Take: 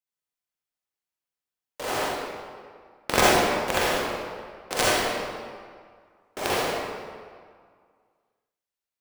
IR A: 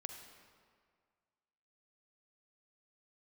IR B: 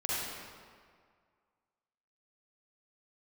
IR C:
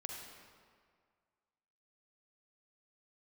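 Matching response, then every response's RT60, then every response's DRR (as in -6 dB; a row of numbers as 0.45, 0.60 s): B; 1.9, 1.9, 1.9 s; 5.0, -8.0, 0.5 dB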